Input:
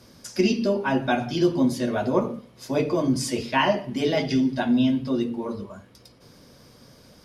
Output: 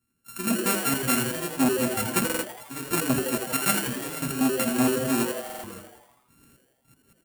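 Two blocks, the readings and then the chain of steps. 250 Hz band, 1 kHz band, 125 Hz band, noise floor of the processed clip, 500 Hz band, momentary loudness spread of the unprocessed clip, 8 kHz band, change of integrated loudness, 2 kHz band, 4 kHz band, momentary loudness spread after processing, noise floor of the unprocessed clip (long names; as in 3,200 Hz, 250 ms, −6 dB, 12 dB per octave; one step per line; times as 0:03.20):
−4.0 dB, −2.5 dB, −3.5 dB, −70 dBFS, −5.0 dB, 10 LU, +10.5 dB, −1.5 dB, 0.0 dB, −0.5 dB, 12 LU, −53 dBFS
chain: samples sorted by size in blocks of 32 samples
drawn EQ curve 290 Hz 0 dB, 540 Hz −14 dB, 4,800 Hz +6 dB
gate pattern "...x.x.x.x.xxx" 160 BPM −12 dB
noise gate −49 dBFS, range −12 dB
flat-topped bell 4,400 Hz −10 dB 1.3 octaves
in parallel at −7.5 dB: centre clipping without the shift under −38 dBFS
on the sum: mains-hum notches 50/100/150/200 Hz
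on a send: echo with shifted repeats 82 ms, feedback 60%, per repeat +130 Hz, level −7.5 dB
on the sum: buffer that repeats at 0:02.25/0:05.45, samples 2,048, times 3
saturating transformer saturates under 1,400 Hz
level −1 dB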